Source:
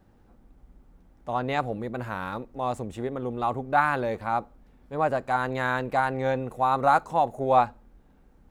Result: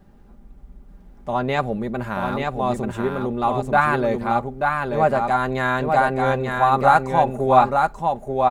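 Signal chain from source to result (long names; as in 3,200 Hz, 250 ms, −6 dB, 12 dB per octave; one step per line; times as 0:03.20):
low-shelf EQ 220 Hz +5 dB
comb filter 5 ms, depth 46%
on a send: single-tap delay 885 ms −4 dB
on the sum: level +4 dB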